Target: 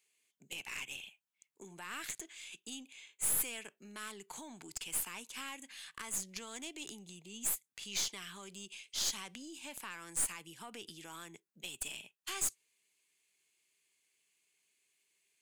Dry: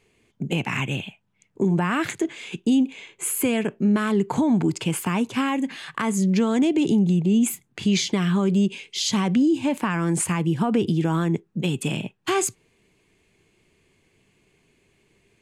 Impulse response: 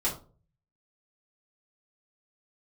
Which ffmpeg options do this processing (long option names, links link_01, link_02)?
-af "aderivative,aeval=exprs='(tanh(20*val(0)+0.5)-tanh(0.5))/20':channel_layout=same,volume=-2dB"